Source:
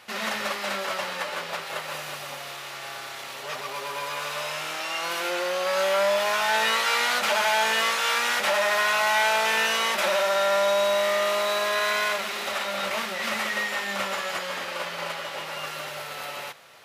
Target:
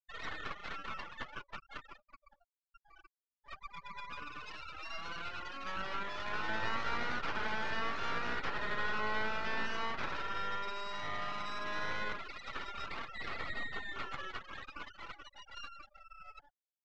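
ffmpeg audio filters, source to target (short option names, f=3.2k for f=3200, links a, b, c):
-filter_complex "[0:a]afftfilt=real='re*gte(hypot(re,im),0.0708)':imag='im*gte(hypot(re,im),0.0708)':win_size=1024:overlap=0.75,highpass=f=1.1k:w=0.5412,highpass=f=1.1k:w=1.3066,aeval=exprs='max(val(0),0)':c=same,acrossover=split=1600[a][b];[b]acompressor=threshold=-44dB:ratio=6[c];[a][c]amix=inputs=2:normalize=0,lowpass=f=6.1k:w=0.5412,lowpass=f=6.1k:w=1.3066,volume=-2dB"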